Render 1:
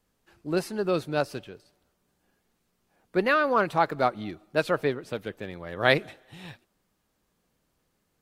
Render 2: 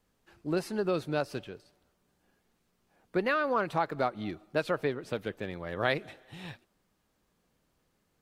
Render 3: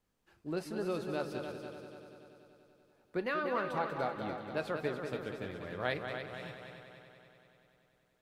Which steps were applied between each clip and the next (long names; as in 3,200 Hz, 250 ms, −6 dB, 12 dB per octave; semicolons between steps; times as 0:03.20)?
high-shelf EQ 7,100 Hz −4 dB; downward compressor 2.5 to 1, threshold −27 dBFS, peak gain reduction 8.5 dB
echo machine with several playback heads 96 ms, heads second and third, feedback 60%, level −8 dB; convolution reverb RT60 0.25 s, pre-delay 5 ms, DRR 12 dB; level −7 dB